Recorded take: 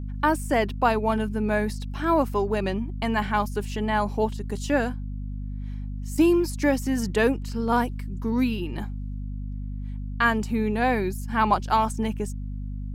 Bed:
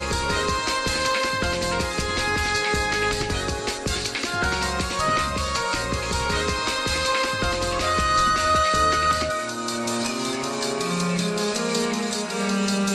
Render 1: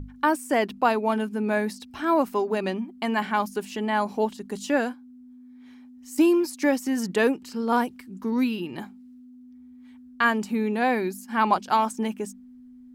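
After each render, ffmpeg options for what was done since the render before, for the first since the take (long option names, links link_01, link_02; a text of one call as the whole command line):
ffmpeg -i in.wav -af "bandreject=frequency=50:width_type=h:width=6,bandreject=frequency=100:width_type=h:width=6,bandreject=frequency=150:width_type=h:width=6,bandreject=frequency=200:width_type=h:width=6" out.wav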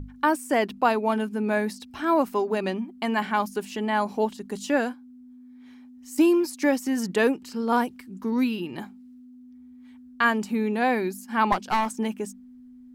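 ffmpeg -i in.wav -filter_complex "[0:a]asettb=1/sr,asplit=3[link_01][link_02][link_03];[link_01]atrim=end=11.524[link_04];[link_02]atrim=start=11.52:end=11.92,asetpts=PTS-STARTPTS,afade=type=in:duration=0.004:curve=qsin,afade=type=out:start_time=0.396:duration=0.004:curve=qsin,aeval=exprs='clip(val(0),-1,0.0562)':channel_layout=same[link_05];[link_03]atrim=start=11.916[link_06];[link_04][link_05]acrossfade=duration=0.004:curve1=hsin:curve2=qsin[link_07];[link_07][link_06]acrossfade=duration=0.004:curve1=qsin:curve2=hsin" out.wav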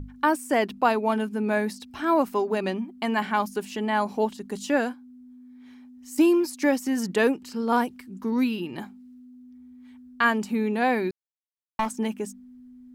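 ffmpeg -i in.wav -filter_complex "[0:a]asplit=3[link_01][link_02][link_03];[link_01]atrim=end=11.11,asetpts=PTS-STARTPTS,afade=type=out:start_time=11.106:duration=0.004:curve=hsin[link_04];[link_02]atrim=start=11.11:end=11.79,asetpts=PTS-STARTPTS,volume=0[link_05];[link_03]atrim=start=11.79,asetpts=PTS-STARTPTS,afade=type=in:duration=0.004:curve=hsin[link_06];[link_04][link_05][link_06]concat=n=3:v=0:a=1" out.wav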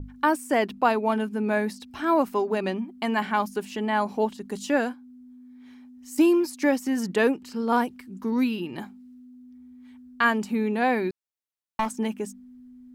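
ffmpeg -i in.wav -af "adynamicequalizer=threshold=0.00631:dfrequency=3800:dqfactor=0.7:tfrequency=3800:tqfactor=0.7:attack=5:release=100:ratio=0.375:range=1.5:mode=cutabove:tftype=highshelf" out.wav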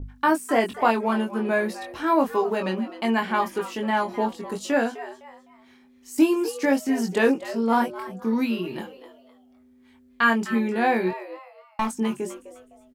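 ffmpeg -i in.wav -filter_complex "[0:a]asplit=2[link_01][link_02];[link_02]adelay=22,volume=-4dB[link_03];[link_01][link_03]amix=inputs=2:normalize=0,asplit=4[link_04][link_05][link_06][link_07];[link_05]adelay=255,afreqshift=140,volume=-14.5dB[link_08];[link_06]adelay=510,afreqshift=280,volume=-24.7dB[link_09];[link_07]adelay=765,afreqshift=420,volume=-34.8dB[link_10];[link_04][link_08][link_09][link_10]amix=inputs=4:normalize=0" out.wav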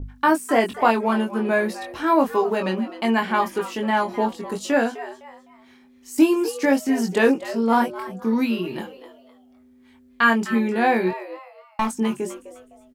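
ffmpeg -i in.wav -af "volume=2.5dB" out.wav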